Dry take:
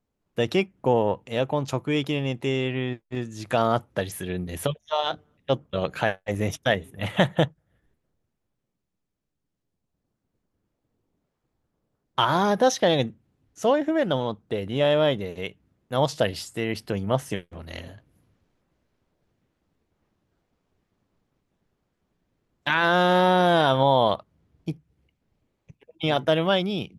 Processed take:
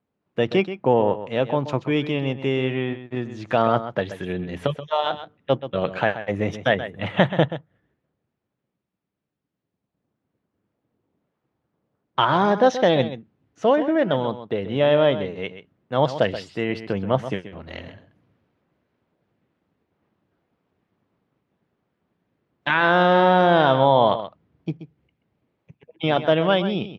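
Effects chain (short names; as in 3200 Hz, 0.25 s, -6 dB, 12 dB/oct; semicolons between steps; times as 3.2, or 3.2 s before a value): BPF 110–3100 Hz; on a send: echo 0.13 s -12 dB; on the sum: gain +3 dB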